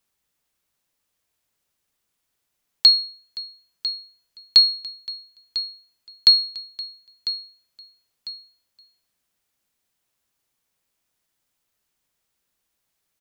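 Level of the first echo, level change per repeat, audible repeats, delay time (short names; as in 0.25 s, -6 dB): -13.5 dB, -8.0 dB, 2, 0.999 s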